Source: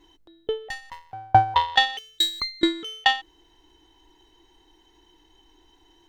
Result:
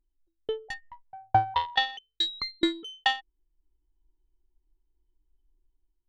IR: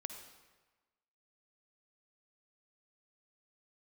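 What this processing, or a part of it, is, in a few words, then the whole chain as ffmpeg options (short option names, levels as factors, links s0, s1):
voice memo with heavy noise removal: -filter_complex "[0:a]asettb=1/sr,asplit=3[s0][s1][s2];[s0]atrim=end=0.744[s3];[s1]atrim=start=0.74:end=2.49,asetpts=PTS-STARTPTS,afade=t=in:d=0.004:c=qsin,afade=t=out:st=1.746:d=0.004:c=qsin,lowpass=f=5700:w=0.5412,lowpass=f=5700:w=1.3066[s4];[s2]atrim=start=2.486[s5];[s3][s4]acrossfade=d=0.004:c1=hsin:c2=qsin[s6];[s6][s5]acrossfade=d=0.004:c1=qsin:c2=hsin,anlmdn=10,dynaudnorm=f=180:g=5:m=2,volume=0.376"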